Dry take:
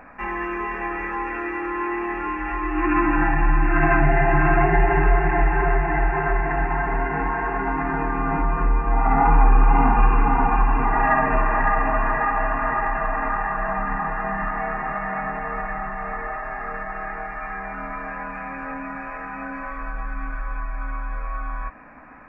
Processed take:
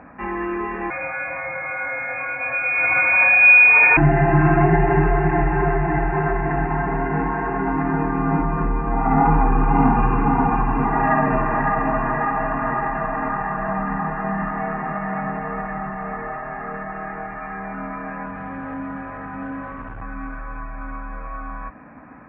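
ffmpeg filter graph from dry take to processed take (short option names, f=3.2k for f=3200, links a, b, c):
-filter_complex "[0:a]asettb=1/sr,asplit=3[a][b][c];[a]atrim=end=0.904[d];[b]atrim=start=0.9:end=3.97,asetpts=PTS-STARTPTS,afade=t=in:d=0.004:c=qsin,afade=t=out:st=3.066:d=0.004:c=qsin,lowshelf=f=130:g=11,lowpass=f=2.1k:t=q:w=0.5098,lowpass=f=2.1k:t=q:w=0.6013,lowpass=f=2.1k:t=q:w=0.9,lowpass=f=2.1k:t=q:w=2.563,afreqshift=-2500[e];[c]atrim=start=3.966[f];[d][e]acrossfade=d=0.004:c1=hsin:c2=qsin[g];[g][f]acrossfade=d=0.004:c1=qsin:c2=hsin,asettb=1/sr,asplit=3[h][i][j];[h]atrim=end=18.264[k];[i]atrim=start=18.26:end=20.02,asetpts=PTS-STARTPTS,afade=t=in:d=0.004:c=qsin,afade=t=out:st=1.756:d=0.004:c=qsin,aeval=exprs='val(0)+0.00631*(sin(2*PI*50*n/s)+sin(2*PI*2*50*n/s)/2+sin(2*PI*3*50*n/s)/3+sin(2*PI*4*50*n/s)/4+sin(2*PI*5*50*n/s)/5)':c=same,asoftclip=type=hard:threshold=-28.5dB,lowpass=f=2.3k:w=0.5412,lowpass=f=2.3k:w=1.3066[l];[j]atrim=start=20.016[m];[k][l]acrossfade=d=0.004:c1=hsin:c2=qsin[n];[n][m]acrossfade=d=0.004:c1=qsin:c2=hsin,highpass=140,aemphasis=mode=reproduction:type=riaa"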